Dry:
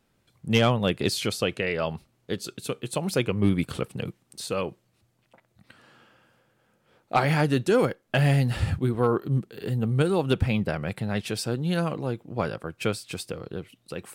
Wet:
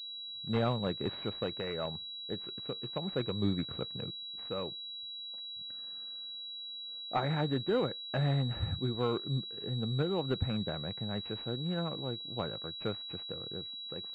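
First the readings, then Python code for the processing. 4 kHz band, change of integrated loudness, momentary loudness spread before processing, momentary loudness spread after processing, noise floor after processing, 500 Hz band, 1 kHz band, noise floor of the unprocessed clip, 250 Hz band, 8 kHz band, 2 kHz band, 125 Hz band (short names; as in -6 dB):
-0.5 dB, -9.0 dB, 13 LU, 9 LU, -44 dBFS, -9.0 dB, -9.5 dB, -70 dBFS, -9.0 dB, under -30 dB, -14.0 dB, -9.0 dB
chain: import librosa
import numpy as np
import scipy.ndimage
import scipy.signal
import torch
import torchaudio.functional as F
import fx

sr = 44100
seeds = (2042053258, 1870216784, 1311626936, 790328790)

y = fx.dead_time(x, sr, dead_ms=0.078)
y = fx.pwm(y, sr, carrier_hz=3900.0)
y = y * 10.0 ** (-9.0 / 20.0)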